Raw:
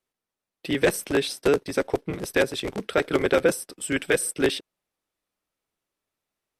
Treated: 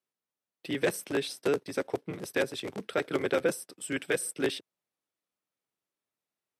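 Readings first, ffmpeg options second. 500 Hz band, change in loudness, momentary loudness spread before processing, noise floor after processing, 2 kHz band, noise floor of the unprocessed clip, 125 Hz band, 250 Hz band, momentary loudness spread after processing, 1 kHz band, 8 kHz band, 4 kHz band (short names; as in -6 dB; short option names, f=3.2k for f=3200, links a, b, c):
-7.0 dB, -7.0 dB, 7 LU, under -85 dBFS, -7.0 dB, under -85 dBFS, -7.5 dB, -7.0 dB, 7 LU, -7.0 dB, -7.0 dB, -7.0 dB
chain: -af "highpass=f=100:w=0.5412,highpass=f=100:w=1.3066,volume=-7dB"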